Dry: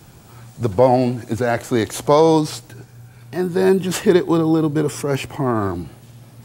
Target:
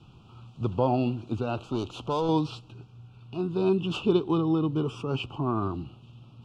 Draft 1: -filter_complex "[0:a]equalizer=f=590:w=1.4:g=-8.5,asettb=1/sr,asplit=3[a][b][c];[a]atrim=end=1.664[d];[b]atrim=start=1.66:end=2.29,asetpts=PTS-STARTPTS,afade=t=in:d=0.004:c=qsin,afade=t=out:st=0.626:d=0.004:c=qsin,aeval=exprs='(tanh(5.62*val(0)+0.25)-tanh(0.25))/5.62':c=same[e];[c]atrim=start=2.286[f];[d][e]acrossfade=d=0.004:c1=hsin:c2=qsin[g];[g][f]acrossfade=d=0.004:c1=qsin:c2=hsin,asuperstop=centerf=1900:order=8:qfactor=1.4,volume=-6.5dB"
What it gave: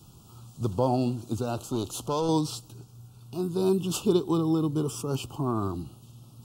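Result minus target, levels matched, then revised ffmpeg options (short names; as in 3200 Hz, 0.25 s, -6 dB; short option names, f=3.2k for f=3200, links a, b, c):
2000 Hz band -6.5 dB
-filter_complex "[0:a]lowpass=f=2.5k:t=q:w=2.8,equalizer=f=590:w=1.4:g=-8.5,asettb=1/sr,asplit=3[a][b][c];[a]atrim=end=1.664[d];[b]atrim=start=1.66:end=2.29,asetpts=PTS-STARTPTS,afade=t=in:d=0.004:c=qsin,afade=t=out:st=0.626:d=0.004:c=qsin,aeval=exprs='(tanh(5.62*val(0)+0.25)-tanh(0.25))/5.62':c=same[e];[c]atrim=start=2.286[f];[d][e]acrossfade=d=0.004:c1=hsin:c2=qsin[g];[g][f]acrossfade=d=0.004:c1=qsin:c2=hsin,asuperstop=centerf=1900:order=8:qfactor=1.4,volume=-6.5dB"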